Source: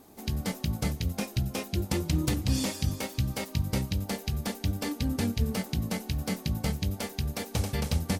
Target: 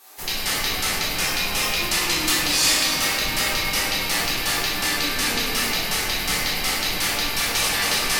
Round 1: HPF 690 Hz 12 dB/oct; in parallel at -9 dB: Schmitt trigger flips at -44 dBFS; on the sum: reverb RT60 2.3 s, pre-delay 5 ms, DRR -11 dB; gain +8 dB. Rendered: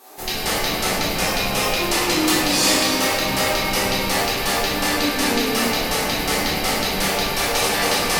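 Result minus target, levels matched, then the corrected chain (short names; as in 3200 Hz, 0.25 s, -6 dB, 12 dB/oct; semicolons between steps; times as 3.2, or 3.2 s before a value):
500 Hz band +8.0 dB
HPF 1400 Hz 12 dB/oct; in parallel at -9 dB: Schmitt trigger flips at -44 dBFS; on the sum: reverb RT60 2.3 s, pre-delay 5 ms, DRR -11 dB; gain +8 dB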